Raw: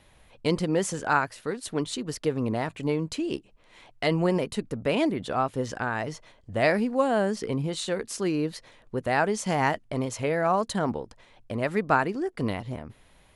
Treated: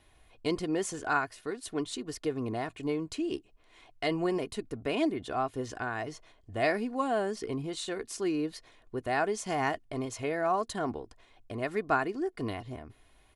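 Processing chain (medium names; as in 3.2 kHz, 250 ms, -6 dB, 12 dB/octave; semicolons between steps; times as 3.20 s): comb 2.8 ms, depth 51%; trim -6 dB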